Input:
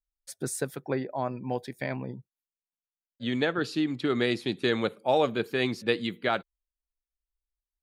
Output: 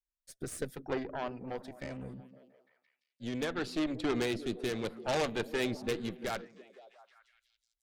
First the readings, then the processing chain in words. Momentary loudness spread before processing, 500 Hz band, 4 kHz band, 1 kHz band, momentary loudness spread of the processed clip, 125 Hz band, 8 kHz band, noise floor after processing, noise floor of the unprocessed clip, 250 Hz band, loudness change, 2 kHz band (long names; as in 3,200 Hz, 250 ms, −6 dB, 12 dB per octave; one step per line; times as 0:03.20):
9 LU, −6.5 dB, −7.0 dB, −7.5 dB, 13 LU, −7.0 dB, −5.0 dB, below −85 dBFS, below −85 dBFS, −6.0 dB, −6.5 dB, −7.5 dB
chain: harmonic generator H 5 −16 dB, 6 −9 dB, 8 −7 dB, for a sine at −12 dBFS
rotating-speaker cabinet horn 0.7 Hz
echo through a band-pass that steps 171 ms, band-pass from 210 Hz, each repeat 0.7 octaves, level −10 dB
level −9 dB